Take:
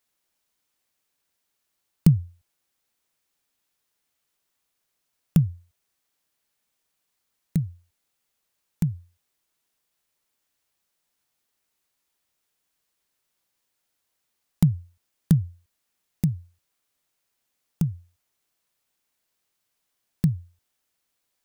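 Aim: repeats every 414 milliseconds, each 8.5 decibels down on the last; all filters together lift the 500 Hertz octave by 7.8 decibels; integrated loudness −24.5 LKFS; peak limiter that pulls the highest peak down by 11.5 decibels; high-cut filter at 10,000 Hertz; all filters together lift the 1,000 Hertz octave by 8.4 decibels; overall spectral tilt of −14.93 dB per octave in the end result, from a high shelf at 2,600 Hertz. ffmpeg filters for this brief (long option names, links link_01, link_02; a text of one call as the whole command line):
ffmpeg -i in.wav -af "lowpass=10000,equalizer=frequency=500:width_type=o:gain=8.5,equalizer=frequency=1000:width_type=o:gain=8.5,highshelf=frequency=2600:gain=-5,alimiter=limit=-14dB:level=0:latency=1,aecho=1:1:414|828|1242|1656:0.376|0.143|0.0543|0.0206,volume=7dB" out.wav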